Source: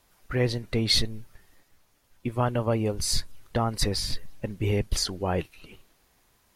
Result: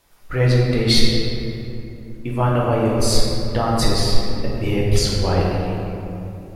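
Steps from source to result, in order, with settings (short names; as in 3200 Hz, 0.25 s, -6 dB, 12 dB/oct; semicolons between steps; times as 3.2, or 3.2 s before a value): shoebox room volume 120 m³, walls hard, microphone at 0.66 m; gain +2.5 dB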